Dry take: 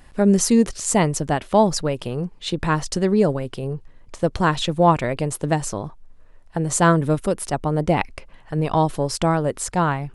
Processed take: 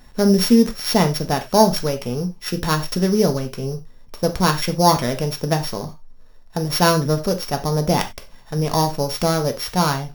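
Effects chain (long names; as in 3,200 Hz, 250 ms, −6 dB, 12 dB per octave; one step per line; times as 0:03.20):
samples sorted by size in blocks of 8 samples
reverb whose tail is shaped and stops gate 120 ms falling, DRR 5 dB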